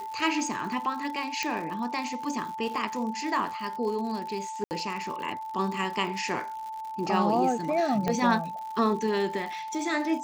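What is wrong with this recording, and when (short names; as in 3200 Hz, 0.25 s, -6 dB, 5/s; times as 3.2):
crackle 120/s -36 dBFS
tone 880 Hz -34 dBFS
1.43 pop -14 dBFS
4.64–4.71 gap 69 ms
8.08 pop -14 dBFS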